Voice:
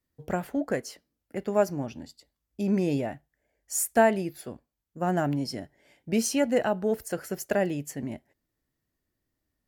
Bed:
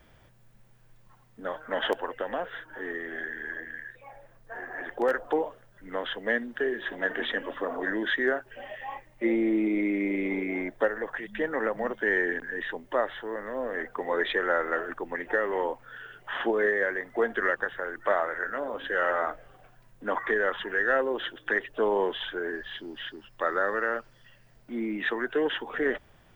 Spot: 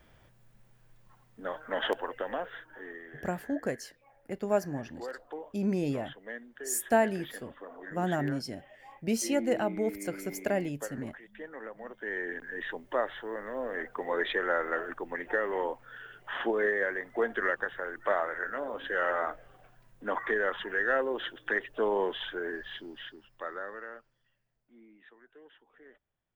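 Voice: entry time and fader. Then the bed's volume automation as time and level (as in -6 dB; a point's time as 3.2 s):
2.95 s, -4.0 dB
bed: 2.36 s -2.5 dB
3.31 s -14.5 dB
11.78 s -14.5 dB
12.68 s -3 dB
22.76 s -3 dB
25.12 s -29 dB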